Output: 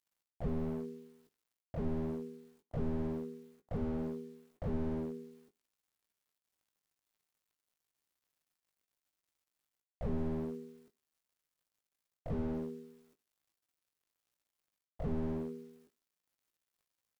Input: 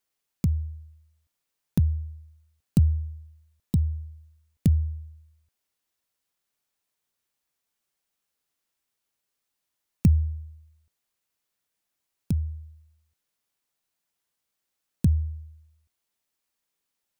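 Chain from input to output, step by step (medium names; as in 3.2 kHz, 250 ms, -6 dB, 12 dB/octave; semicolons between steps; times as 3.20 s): treble shelf 2.5 kHz -10.5 dB; reverse; compression 5:1, threshold -29 dBFS, peak gain reduction 14 dB; reverse; harmony voices +12 st -14 dB; companded quantiser 8-bit; ring modulator 320 Hz; doubling 19 ms -8 dB; on a send at -14.5 dB: reverberation RT60 0.40 s, pre-delay 3 ms; on the sum: slew-rate limiter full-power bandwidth 1.5 Hz; trim +10.5 dB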